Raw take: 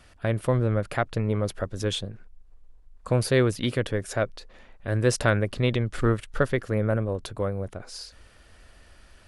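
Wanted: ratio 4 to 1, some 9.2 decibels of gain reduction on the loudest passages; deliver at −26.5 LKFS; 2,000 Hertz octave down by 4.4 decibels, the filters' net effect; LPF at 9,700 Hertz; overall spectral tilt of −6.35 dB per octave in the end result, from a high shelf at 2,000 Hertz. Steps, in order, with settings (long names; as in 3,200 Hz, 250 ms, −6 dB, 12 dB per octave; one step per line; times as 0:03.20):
low-pass filter 9,700 Hz
high-shelf EQ 2,000 Hz −3.5 dB
parametric band 2,000 Hz −4 dB
downward compressor 4 to 1, threshold −28 dBFS
level +7.5 dB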